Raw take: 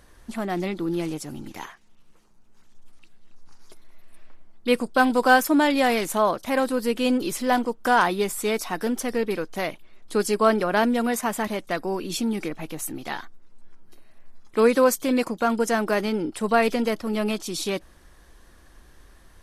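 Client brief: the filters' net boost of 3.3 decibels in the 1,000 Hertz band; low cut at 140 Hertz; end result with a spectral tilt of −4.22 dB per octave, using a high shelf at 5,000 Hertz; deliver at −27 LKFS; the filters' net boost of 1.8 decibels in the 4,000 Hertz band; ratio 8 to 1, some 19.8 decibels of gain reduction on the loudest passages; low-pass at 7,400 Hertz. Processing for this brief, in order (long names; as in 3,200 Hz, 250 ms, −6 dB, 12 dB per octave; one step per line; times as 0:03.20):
high-pass filter 140 Hz
low-pass filter 7,400 Hz
parametric band 1,000 Hz +4.5 dB
parametric band 4,000 Hz +5 dB
high-shelf EQ 5,000 Hz −6 dB
downward compressor 8 to 1, threshold −31 dBFS
level +8.5 dB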